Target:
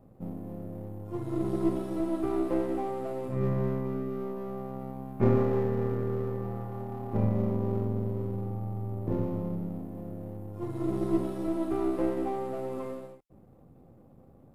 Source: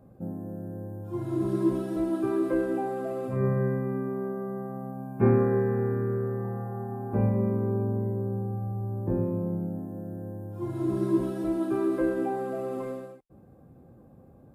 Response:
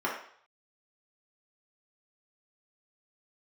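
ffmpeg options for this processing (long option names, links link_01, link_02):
-af "aeval=exprs='if(lt(val(0),0),0.447*val(0),val(0))':channel_layout=same,bandreject=frequency=1600:width=8.8"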